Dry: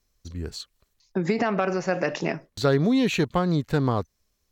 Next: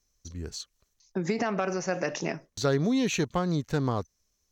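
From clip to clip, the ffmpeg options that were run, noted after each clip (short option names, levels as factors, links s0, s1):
-af "equalizer=f=6100:t=o:w=0.38:g=11,volume=0.596"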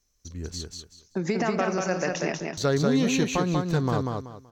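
-af "aecho=1:1:190|380|570|760:0.668|0.174|0.0452|0.0117,volume=1.19"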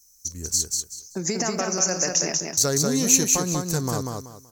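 -af "aexciter=amount=12.7:drive=5.1:freq=5200,volume=0.841"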